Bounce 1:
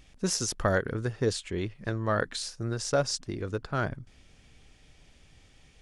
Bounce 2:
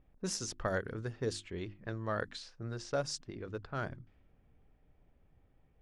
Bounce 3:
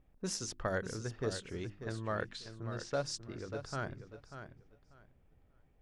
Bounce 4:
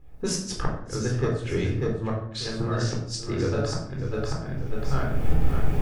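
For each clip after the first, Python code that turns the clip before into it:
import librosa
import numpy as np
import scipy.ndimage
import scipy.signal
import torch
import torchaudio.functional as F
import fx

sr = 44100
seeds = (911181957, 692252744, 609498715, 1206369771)

y1 = fx.env_lowpass(x, sr, base_hz=930.0, full_db=-24.0)
y1 = fx.hum_notches(y1, sr, base_hz=50, count=7)
y1 = F.gain(torch.from_numpy(y1), -8.0).numpy()
y2 = fx.echo_feedback(y1, sr, ms=591, feedback_pct=18, wet_db=-10)
y2 = F.gain(torch.from_numpy(y2), -1.0).numpy()
y3 = fx.recorder_agc(y2, sr, target_db=-29.0, rise_db_per_s=38.0, max_gain_db=30)
y3 = fx.gate_flip(y3, sr, shuts_db=-25.0, range_db=-29)
y3 = fx.room_shoebox(y3, sr, seeds[0], volume_m3=1000.0, walls='furnished', distance_m=4.0)
y3 = F.gain(torch.from_numpy(y3), 6.5).numpy()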